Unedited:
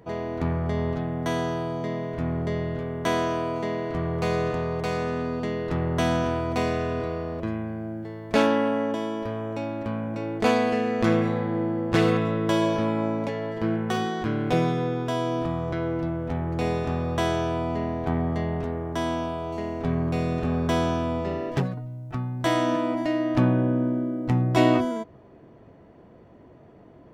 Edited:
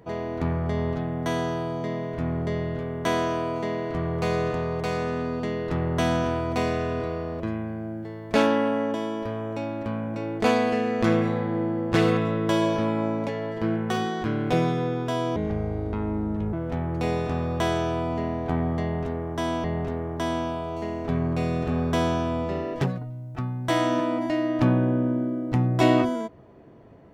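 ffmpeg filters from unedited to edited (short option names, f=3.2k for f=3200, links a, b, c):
-filter_complex "[0:a]asplit=4[a][b][c][d];[a]atrim=end=15.364[e];[b]atrim=start=15.36:end=16.11,asetpts=PTS-STARTPTS,asetrate=28224,aresample=44100[f];[c]atrim=start=16.106:end=19.222[g];[d]atrim=start=18.398[h];[e][f]acrossfade=d=0.004:c1=hsin:c2=hsin[i];[i][g]acrossfade=d=0.004:c1=hsin:c2=hsin[j];[j][h]acrossfade=d=0.004:c1=hsin:c2=hsin"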